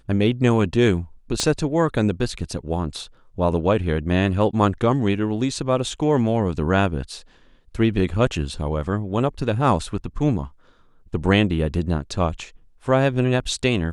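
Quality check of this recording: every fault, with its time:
1.4 pop -8 dBFS

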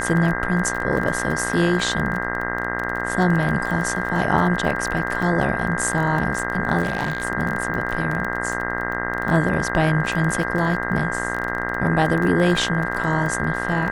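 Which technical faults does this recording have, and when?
buzz 60 Hz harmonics 34 -27 dBFS
crackle 25/s -25 dBFS
tone 1600 Hz -27 dBFS
5.22 gap 4.6 ms
6.83–7.25 clipped -17.5 dBFS

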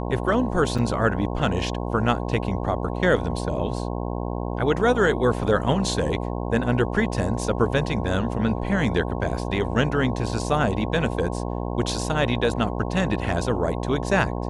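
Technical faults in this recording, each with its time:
buzz 60 Hz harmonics 18 -28 dBFS
0.78–0.79 gap 5.7 ms

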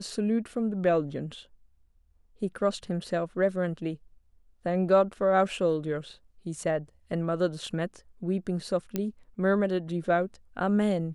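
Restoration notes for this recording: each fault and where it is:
8.96 pop -15 dBFS

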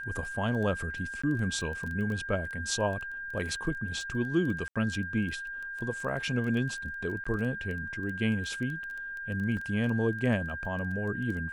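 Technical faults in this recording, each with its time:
crackle 12/s -35 dBFS
tone 1600 Hz -36 dBFS
1.22–1.24 gap 15 ms
4.68–4.76 gap 76 ms
7.24–7.25 gap
9.57 gap 2.5 ms

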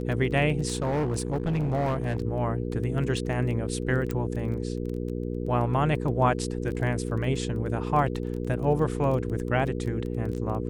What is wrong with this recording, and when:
crackle 15/s -33 dBFS
hum 60 Hz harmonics 8 -31 dBFS
0.68–2.18 clipped -22.5 dBFS
4.11 pop -17 dBFS

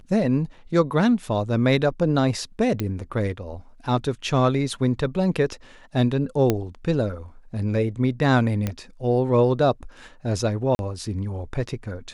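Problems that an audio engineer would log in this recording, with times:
2.8 pop -13 dBFS
6.5 pop -7 dBFS
8.67 pop -12 dBFS
10.75–10.79 gap 41 ms

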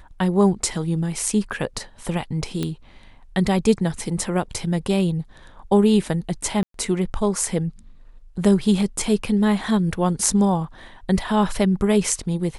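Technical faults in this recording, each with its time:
2.63 pop -12 dBFS
6.63–6.74 gap 0.113 s

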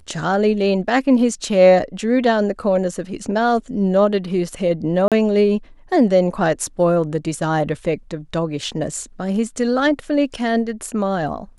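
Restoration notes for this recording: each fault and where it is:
5.08–5.12 gap 37 ms

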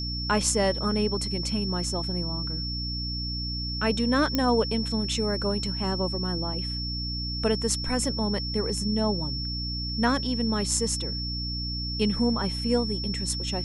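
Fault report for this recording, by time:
hum 60 Hz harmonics 5 -33 dBFS
tone 5400 Hz -32 dBFS
4.35 pop -10 dBFS

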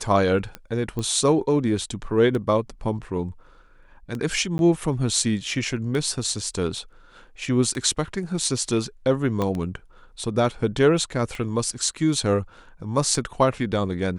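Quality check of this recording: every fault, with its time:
tick 33 1/3 rpm -18 dBFS
0.99 pop -17 dBFS
4.58–4.59 gap 11 ms
9.42 pop -13 dBFS

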